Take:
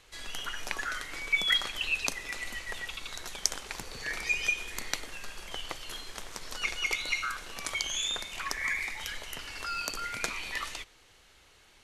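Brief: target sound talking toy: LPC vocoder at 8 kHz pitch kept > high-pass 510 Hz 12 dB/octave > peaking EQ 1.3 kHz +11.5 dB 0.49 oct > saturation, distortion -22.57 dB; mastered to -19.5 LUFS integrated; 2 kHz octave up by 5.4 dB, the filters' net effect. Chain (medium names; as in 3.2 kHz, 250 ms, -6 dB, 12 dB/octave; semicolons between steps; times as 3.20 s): peaking EQ 2 kHz +4 dB; LPC vocoder at 8 kHz pitch kept; high-pass 510 Hz 12 dB/octave; peaking EQ 1.3 kHz +11.5 dB 0.49 oct; saturation -14 dBFS; trim +9.5 dB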